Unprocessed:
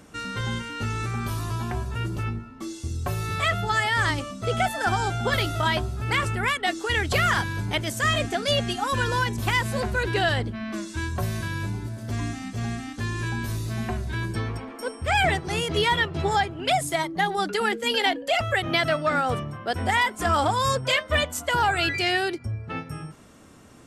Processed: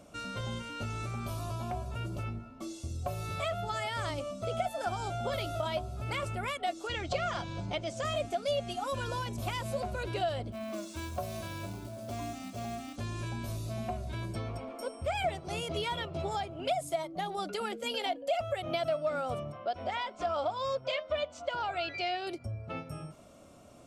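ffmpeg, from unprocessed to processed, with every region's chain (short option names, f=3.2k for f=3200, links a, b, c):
-filter_complex "[0:a]asettb=1/sr,asplit=3[a][b][c];[a]atrim=end=6.874[d];[b]atrim=start=6.87:end=8.05,asetpts=PTS-STARTPTS,afade=t=in:d=0.004:c=qsin,afade=t=out:st=1.176:d=0.004:c=qsin,lowpass=f=6.9k:w=0.5412,lowpass=f=6.9k:w=1.3066,aecho=1:1:5.8:0.33,atrim=end_sample=52038[e];[c]atrim=start=8.046[f];[d][e]acrossfade=d=0.004:c1=hsin:c2=qsin[g];[g][f]acrossfade=d=0.004:c1=qsin:c2=hsin,asettb=1/sr,asplit=3[h][i][j];[h]atrim=end=10.524[k];[i]atrim=start=10.52:end=12.96,asetpts=PTS-STARTPTS,afade=t=in:d=0.004:c=qsin,afade=t=out:st=2.436:d=0.004:c=qsin,equalizer=f=130:w=1.5:g=-7,acrusher=bits=4:mode=log:mix=0:aa=0.000001,highpass=63[l];[j]atrim=start=12.956[m];[k][l]acrossfade=d=0.004:c1=hsin:c2=qsin[n];[n][m]acrossfade=d=0.004:c1=qsin:c2=hsin,asettb=1/sr,asplit=3[o][p][q];[o]atrim=end=19.524[r];[p]atrim=start=19.52:end=22.27,asetpts=PTS-STARTPTS,afade=t=in:d=0.004:c=qsin,afade=t=out:st=2.746:d=0.004:c=qsin,lowpass=f=5.4k:w=0.5412,lowpass=f=5.4k:w=1.3066,equalizer=f=100:t=o:w=2.9:g=-8.5[s];[q]atrim=start=22.266[t];[r][s]acrossfade=d=0.004:c1=hsin:c2=qsin[u];[u][t]acrossfade=d=0.004:c1=qsin:c2=hsin,superequalizer=8b=3.16:11b=0.398,acompressor=threshold=-28dB:ratio=2,volume=-6.5dB"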